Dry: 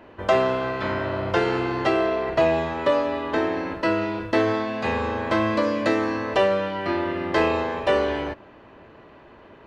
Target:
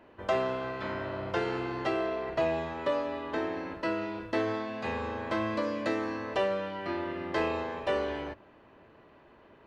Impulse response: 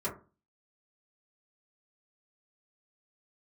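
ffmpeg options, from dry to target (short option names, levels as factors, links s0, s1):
-af "bandreject=f=50:t=h:w=6,bandreject=f=100:t=h:w=6,volume=0.355"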